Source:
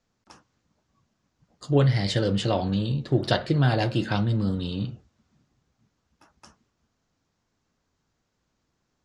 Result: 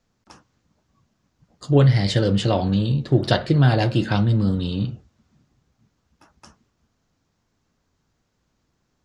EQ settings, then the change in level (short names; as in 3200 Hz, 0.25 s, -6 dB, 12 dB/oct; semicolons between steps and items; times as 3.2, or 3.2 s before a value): low shelf 240 Hz +3.5 dB; +3.0 dB